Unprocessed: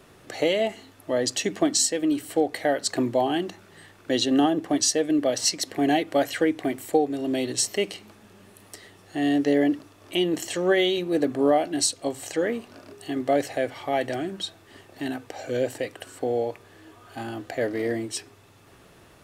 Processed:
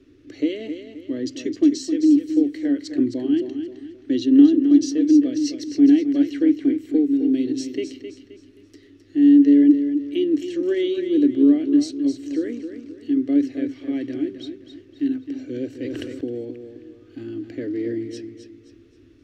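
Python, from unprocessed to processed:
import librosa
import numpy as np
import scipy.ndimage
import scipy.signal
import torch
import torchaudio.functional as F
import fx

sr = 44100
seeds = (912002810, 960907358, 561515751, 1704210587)

y = fx.curve_eq(x, sr, hz=(110.0, 190.0, 280.0, 790.0, 1400.0, 2200.0, 5900.0, 8700.0), db=(0, -17, 12, -27, -14, -9, -10, -24))
y = fx.echo_feedback(y, sr, ms=263, feedback_pct=36, wet_db=-9.0)
y = fx.sustainer(y, sr, db_per_s=21.0, at=(15.69, 16.21))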